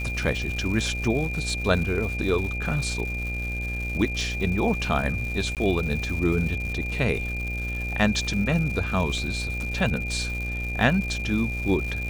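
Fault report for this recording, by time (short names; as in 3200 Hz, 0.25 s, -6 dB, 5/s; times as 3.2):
buzz 60 Hz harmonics 14 -31 dBFS
crackle 250/s -32 dBFS
tone 2400 Hz -31 dBFS
5.55–5.57 gap 18 ms
9.18 gap 2.1 ms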